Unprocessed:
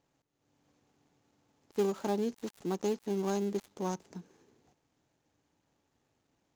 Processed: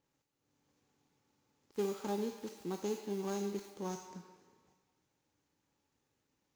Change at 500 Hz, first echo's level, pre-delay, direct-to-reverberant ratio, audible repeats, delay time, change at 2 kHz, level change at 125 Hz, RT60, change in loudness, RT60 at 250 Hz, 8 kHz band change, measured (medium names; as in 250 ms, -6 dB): -5.0 dB, no echo, 17 ms, 3.5 dB, no echo, no echo, -4.0 dB, -5.5 dB, 1.6 s, -5.0 dB, 1.6 s, -2.0 dB